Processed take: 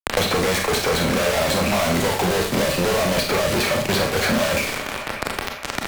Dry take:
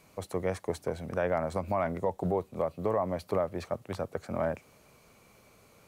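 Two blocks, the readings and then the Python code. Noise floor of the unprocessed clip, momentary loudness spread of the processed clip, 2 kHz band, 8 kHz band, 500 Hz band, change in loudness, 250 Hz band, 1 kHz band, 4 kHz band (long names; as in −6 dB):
−61 dBFS, 7 LU, +21.5 dB, can't be measured, +10.0 dB, +12.5 dB, +13.0 dB, +11.5 dB, +30.0 dB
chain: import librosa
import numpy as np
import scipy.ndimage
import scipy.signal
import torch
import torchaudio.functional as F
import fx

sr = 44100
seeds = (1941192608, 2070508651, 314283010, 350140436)

y = fx.octave_divider(x, sr, octaves=2, level_db=-6.0)
y = fx.weighting(y, sr, curve='D')
y = fx.env_lowpass(y, sr, base_hz=960.0, full_db=-28.0)
y = fx.high_shelf(y, sr, hz=2700.0, db=-3.0)
y = fx.leveller(y, sr, passes=5)
y = fx.fuzz(y, sr, gain_db=54.0, gate_db=-59.0)
y = fx.echo_wet_bandpass(y, sr, ms=198, feedback_pct=66, hz=1500.0, wet_db=-20.0)
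y = fx.rev_schroeder(y, sr, rt60_s=0.32, comb_ms=28, drr_db=2.0)
y = fx.band_squash(y, sr, depth_pct=100)
y = F.gain(torch.from_numpy(y), -8.0).numpy()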